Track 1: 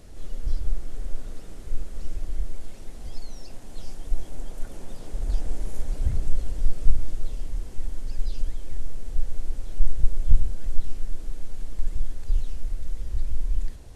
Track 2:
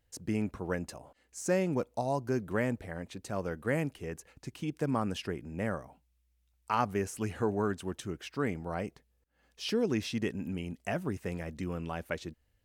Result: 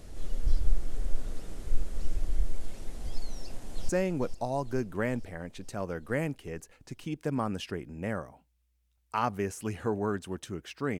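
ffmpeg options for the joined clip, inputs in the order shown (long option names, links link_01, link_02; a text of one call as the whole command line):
ffmpeg -i cue0.wav -i cue1.wav -filter_complex "[0:a]apad=whole_dur=10.99,atrim=end=10.99,atrim=end=3.892[link_01];[1:a]atrim=start=1.448:end=8.55[link_02];[link_01][link_02]acrossfade=duration=0.004:curve1=hsin:curve2=hsin,asplit=2[link_03][link_04];[link_04]afade=type=in:start_time=3.38:duration=0.01,afade=type=out:start_time=3.89:duration=0.01,aecho=0:1:450|900|1350|1800|2250|2700|3150|3600|4050:0.354813|0.230629|0.149909|0.0974406|0.0633364|0.0411687|0.0267596|0.0173938|0.0113059[link_05];[link_03][link_05]amix=inputs=2:normalize=0" out.wav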